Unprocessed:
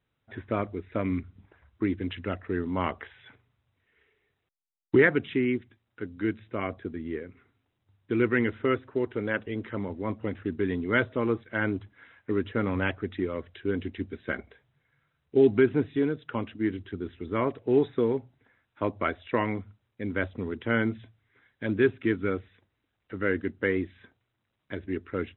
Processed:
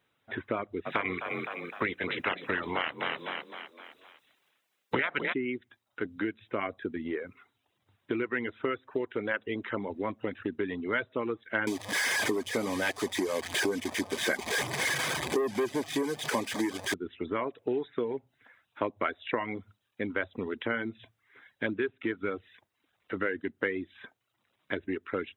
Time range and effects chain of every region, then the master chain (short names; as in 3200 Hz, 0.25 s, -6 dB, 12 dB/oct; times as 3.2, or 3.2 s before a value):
0.85–5.32 spectral limiter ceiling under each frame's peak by 21 dB + frequency-shifting echo 0.256 s, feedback 47%, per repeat +38 Hz, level -9 dB
11.67–16.94 delta modulation 64 kbps, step -34 dBFS + sample leveller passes 3 + notch comb 1400 Hz
whole clip: compressor 6:1, threshold -33 dBFS; reverb removal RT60 0.55 s; HPF 390 Hz 6 dB/oct; gain +8.5 dB